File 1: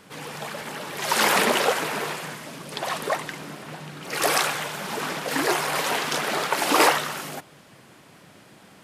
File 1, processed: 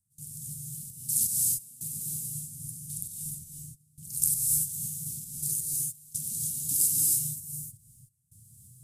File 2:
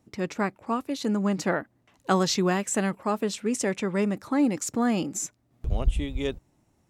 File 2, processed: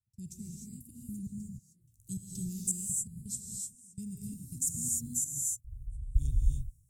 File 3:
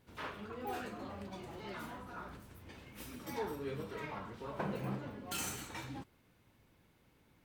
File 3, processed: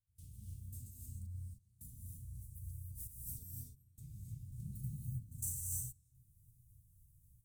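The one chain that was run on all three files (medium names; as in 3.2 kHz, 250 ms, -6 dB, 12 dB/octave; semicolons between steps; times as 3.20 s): trance gate ".xx.x.x...xx" 83 bpm -24 dB; elliptic band-stop 110–8500 Hz, stop band 80 dB; gated-style reverb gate 330 ms rising, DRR -1.5 dB; trim +6.5 dB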